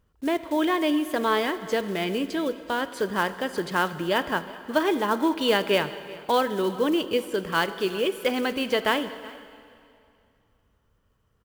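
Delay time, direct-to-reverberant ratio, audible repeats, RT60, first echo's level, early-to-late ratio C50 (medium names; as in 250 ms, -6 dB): 375 ms, 11.5 dB, 1, 2.4 s, -21.0 dB, 12.5 dB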